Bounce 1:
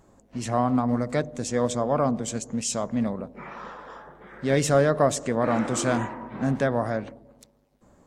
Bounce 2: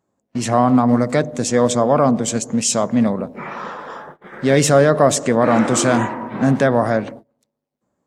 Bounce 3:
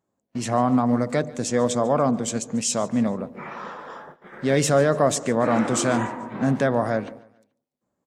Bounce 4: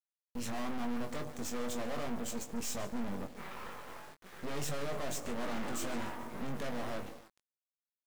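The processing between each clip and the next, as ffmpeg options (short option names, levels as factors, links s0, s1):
-filter_complex "[0:a]highpass=110,agate=range=0.0631:threshold=0.00501:ratio=16:detection=peak,asplit=2[s0][s1];[s1]alimiter=limit=0.158:level=0:latency=1:release=22,volume=1.12[s2];[s0][s2]amix=inputs=2:normalize=0,volume=1.5"
-af "aecho=1:1:144|288|432:0.0841|0.0353|0.0148,volume=0.501"
-filter_complex "[0:a]volume=18.8,asoftclip=hard,volume=0.0531,acrusher=bits=5:dc=4:mix=0:aa=0.000001,asplit=2[s0][s1];[s1]adelay=21,volume=0.473[s2];[s0][s2]amix=inputs=2:normalize=0,volume=0.447"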